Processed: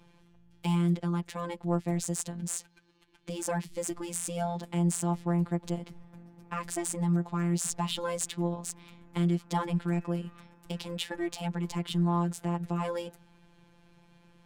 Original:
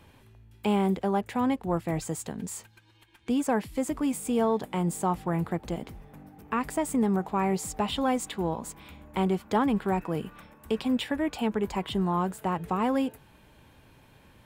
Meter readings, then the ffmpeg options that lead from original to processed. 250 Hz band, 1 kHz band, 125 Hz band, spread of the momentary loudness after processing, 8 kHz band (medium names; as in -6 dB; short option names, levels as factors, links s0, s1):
-3.5 dB, -6.5 dB, +3.5 dB, 10 LU, +4.0 dB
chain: -af "afftfilt=real='hypot(re,im)*cos(PI*b)':imag='0':win_size=1024:overlap=0.75,bass=f=250:g=5,treble=f=4000:g=14,adynamicsmooth=sensitivity=5.5:basefreq=3600,volume=0.794"